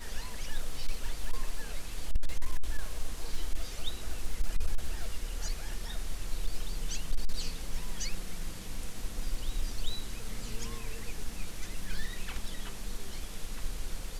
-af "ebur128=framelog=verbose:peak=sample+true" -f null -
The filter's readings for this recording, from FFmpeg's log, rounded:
Integrated loudness:
  I:         -40.9 LUFS
  Threshold: -50.9 LUFS
Loudness range:
  LRA:         1.8 LU
  Threshold: -60.7 LUFS
  LRA low:   -41.8 LUFS
  LRA high:  -40.1 LUFS
Sample peak:
  Peak:      -18.7 dBFS
True peak:
  Peak:      -18.5 dBFS